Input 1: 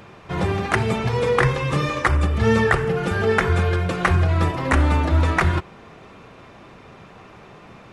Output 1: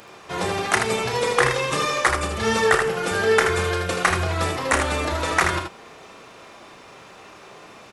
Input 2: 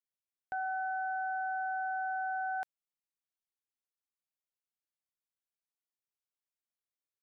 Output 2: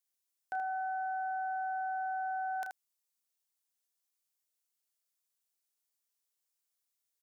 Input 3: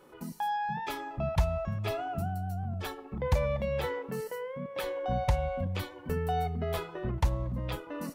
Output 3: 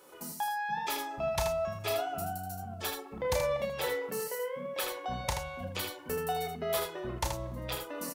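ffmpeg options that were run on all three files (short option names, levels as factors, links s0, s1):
-filter_complex "[0:a]bass=f=250:g=-12,treble=f=4000:g=10,asplit=2[s0][s1];[s1]aecho=0:1:32|79:0.398|0.501[s2];[s0][s2]amix=inputs=2:normalize=0"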